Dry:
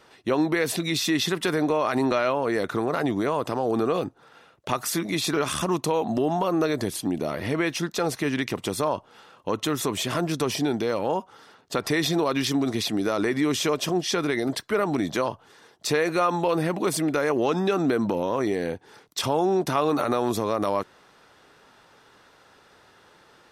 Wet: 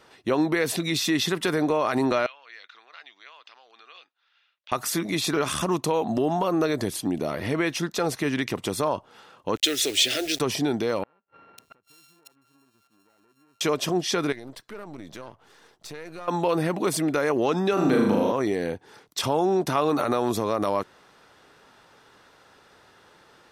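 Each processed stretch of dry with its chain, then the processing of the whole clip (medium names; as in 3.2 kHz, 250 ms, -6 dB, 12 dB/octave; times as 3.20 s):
2.26–4.72 s: Butterworth band-pass 4.7 kHz, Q 0.84 + distance through air 280 m
9.56–10.40 s: frequency weighting D + word length cut 6-bit, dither none + static phaser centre 430 Hz, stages 4
11.03–13.61 s: sorted samples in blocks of 32 samples + inverted gate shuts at -26 dBFS, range -39 dB + bands offset in time lows, highs 550 ms, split 2.6 kHz
14.32–16.28 s: partial rectifier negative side -7 dB + compression 2:1, threshold -46 dBFS
17.73–18.32 s: high-pass 96 Hz + flutter echo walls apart 6.6 m, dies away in 0.88 s
whole clip: none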